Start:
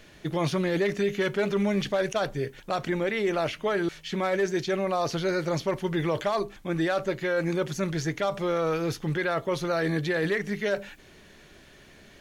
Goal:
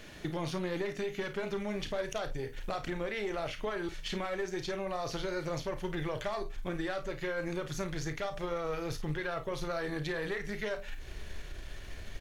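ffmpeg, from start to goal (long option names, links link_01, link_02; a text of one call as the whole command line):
ffmpeg -i in.wav -filter_complex "[0:a]asubboost=boost=10:cutoff=61,acompressor=threshold=-37dB:ratio=4,aeval=exprs='(tanh(17.8*val(0)+0.7)-tanh(0.7))/17.8':channel_layout=same,asplit=2[link_01][link_02];[link_02]aecho=0:1:33|52:0.299|0.237[link_03];[link_01][link_03]amix=inputs=2:normalize=0,volume=6dB" out.wav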